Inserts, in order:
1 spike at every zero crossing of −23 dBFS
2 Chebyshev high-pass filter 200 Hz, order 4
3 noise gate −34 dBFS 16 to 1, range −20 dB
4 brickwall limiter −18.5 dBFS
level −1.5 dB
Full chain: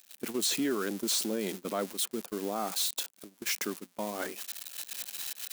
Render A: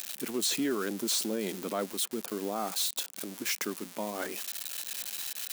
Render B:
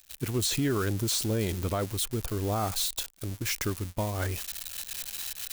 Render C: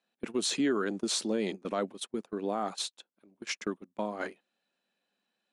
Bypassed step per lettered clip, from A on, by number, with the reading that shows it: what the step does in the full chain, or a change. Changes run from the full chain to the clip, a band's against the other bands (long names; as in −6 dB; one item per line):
3, change in momentary loudness spread −3 LU
2, 125 Hz band +17.5 dB
1, distortion level −7 dB